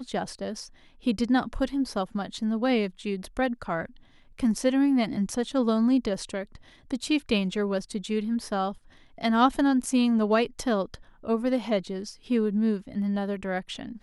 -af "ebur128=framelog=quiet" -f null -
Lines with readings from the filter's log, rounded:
Integrated loudness:
  I:         -27.1 LUFS
  Threshold: -37.4 LUFS
Loudness range:
  LRA:         3.2 LU
  Threshold: -47.1 LUFS
  LRA low:   -28.8 LUFS
  LRA high:  -25.6 LUFS